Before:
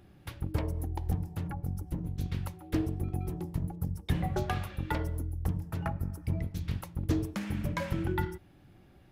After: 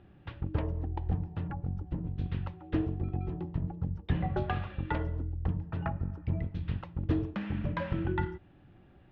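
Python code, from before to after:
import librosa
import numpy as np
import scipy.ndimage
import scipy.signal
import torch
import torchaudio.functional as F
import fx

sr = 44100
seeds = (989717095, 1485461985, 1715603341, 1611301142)

y = scipy.signal.sosfilt(scipy.signal.butter(4, 3200.0, 'lowpass', fs=sr, output='sos'), x)
y = fx.notch(y, sr, hz=2200.0, q=13.0)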